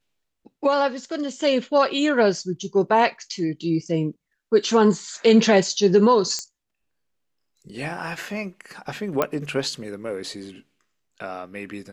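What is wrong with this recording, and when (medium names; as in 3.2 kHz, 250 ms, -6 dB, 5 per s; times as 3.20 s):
6.39 s: pop -14 dBFS
9.22 s: pop -8 dBFS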